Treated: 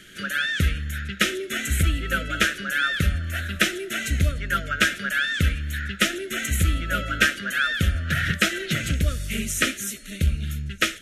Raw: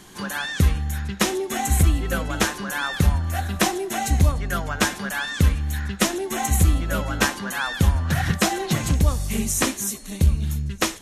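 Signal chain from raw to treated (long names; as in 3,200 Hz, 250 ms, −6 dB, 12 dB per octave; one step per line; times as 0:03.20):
elliptic band-stop filter 650–1,300 Hz, stop band 40 dB
flat-topped bell 2,100 Hz +9.5 dB
level −4 dB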